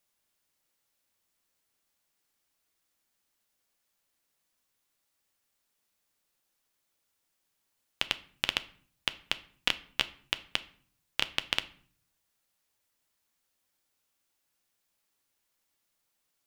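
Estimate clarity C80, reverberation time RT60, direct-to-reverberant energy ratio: 22.0 dB, 0.50 s, 11.0 dB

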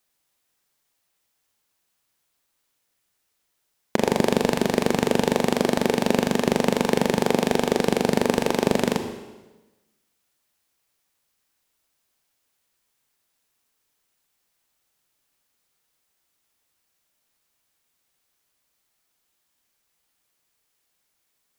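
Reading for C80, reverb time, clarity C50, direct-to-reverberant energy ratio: 9.5 dB, 1.1 s, 8.0 dB, 6.5 dB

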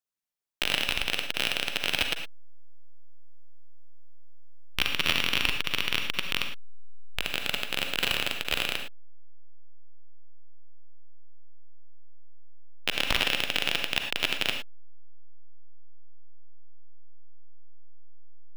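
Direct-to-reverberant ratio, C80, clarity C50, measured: 4.5 dB, 9.0 dB, 5.5 dB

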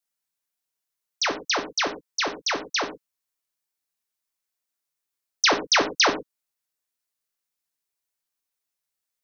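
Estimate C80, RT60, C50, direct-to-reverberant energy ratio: 16.0 dB, not exponential, 11.0 dB, 4.0 dB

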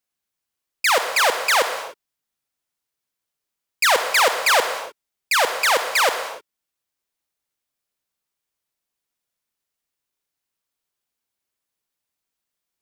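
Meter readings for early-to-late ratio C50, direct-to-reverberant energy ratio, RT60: 7.5 dB, 7.0 dB, not exponential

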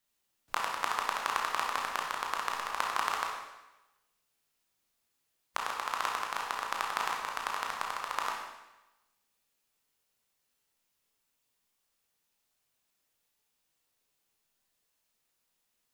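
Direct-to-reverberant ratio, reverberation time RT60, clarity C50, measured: -1.5 dB, 1.0 s, 2.0 dB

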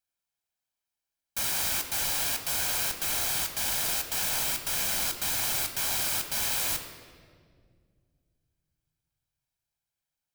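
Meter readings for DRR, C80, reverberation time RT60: 5.5 dB, 9.5 dB, 2.0 s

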